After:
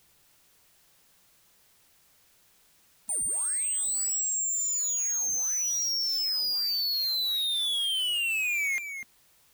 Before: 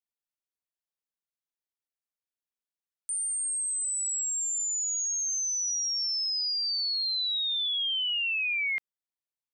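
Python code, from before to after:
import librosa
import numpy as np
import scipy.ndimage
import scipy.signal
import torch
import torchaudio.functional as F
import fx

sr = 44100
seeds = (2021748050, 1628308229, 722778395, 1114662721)

y = fx.brickwall_highpass(x, sr, low_hz=230.0)
y = y + 10.0 ** (-17.5 / 20.0) * np.pad(y, (int(247 * sr / 1000.0), 0))[:len(y)]
y = fx.power_curve(y, sr, exponent=0.35)
y = fx.upward_expand(y, sr, threshold_db=-47.0, expansion=1.5)
y = y * 10.0 ** (-1.5 / 20.0)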